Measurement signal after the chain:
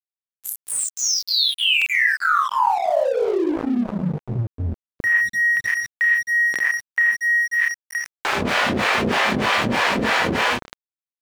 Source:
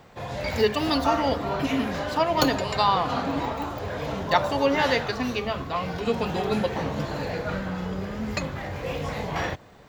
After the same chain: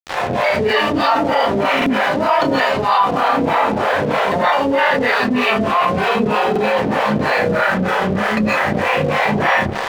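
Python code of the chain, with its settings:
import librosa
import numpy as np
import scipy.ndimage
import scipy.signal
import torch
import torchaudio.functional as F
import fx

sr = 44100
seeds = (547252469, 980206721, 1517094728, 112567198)

y = scipy.signal.sosfilt(scipy.signal.butter(2, 2300.0, 'lowpass', fs=sr, output='sos'), x)
y = fx.doubler(y, sr, ms=33.0, db=-6)
y = fx.echo_filtered(y, sr, ms=200, feedback_pct=69, hz=1200.0, wet_db=-21)
y = fx.rev_gated(y, sr, seeds[0], gate_ms=150, shape='rising', drr_db=-4.5)
y = fx.rider(y, sr, range_db=3, speed_s=0.5)
y = scipy.signal.sosfilt(scipy.signal.butter(2, 110.0, 'highpass', fs=sr, output='sos'), y)
y = fx.low_shelf(y, sr, hz=150.0, db=-11.0)
y = fx.harmonic_tremolo(y, sr, hz=3.2, depth_pct=100, crossover_hz=450.0)
y = fx.low_shelf(y, sr, hz=480.0, db=-10.0)
y = np.sign(y) * np.maximum(np.abs(y) - 10.0 ** (-51.0 / 20.0), 0.0)
y = fx.buffer_glitch(y, sr, at_s=(1.77, 6.51), block=2048, repeats=1)
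y = fx.env_flatten(y, sr, amount_pct=70)
y = F.gain(torch.from_numpy(y), 6.0).numpy()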